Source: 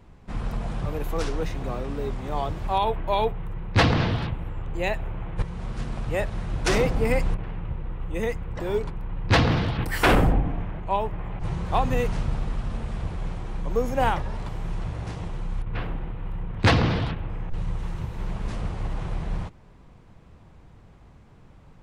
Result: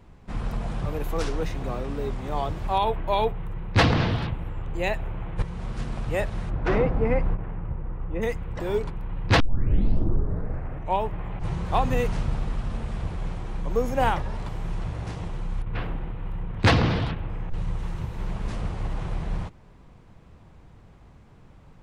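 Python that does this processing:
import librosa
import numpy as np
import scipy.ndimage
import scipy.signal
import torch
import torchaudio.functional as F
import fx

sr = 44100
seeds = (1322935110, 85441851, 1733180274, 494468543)

y = fx.lowpass(x, sr, hz=1700.0, slope=12, at=(6.49, 8.21), fade=0.02)
y = fx.edit(y, sr, fx.tape_start(start_s=9.4, length_s=1.6), tone=tone)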